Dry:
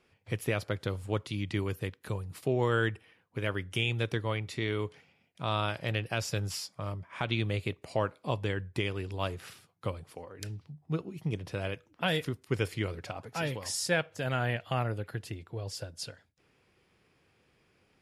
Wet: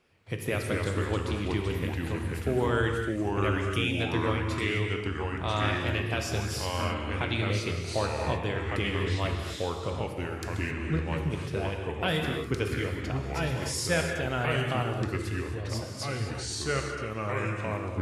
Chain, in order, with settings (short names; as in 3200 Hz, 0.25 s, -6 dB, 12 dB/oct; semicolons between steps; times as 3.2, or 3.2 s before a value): non-linear reverb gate 0.29 s flat, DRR 3 dB; echoes that change speed 0.142 s, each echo -3 st, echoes 2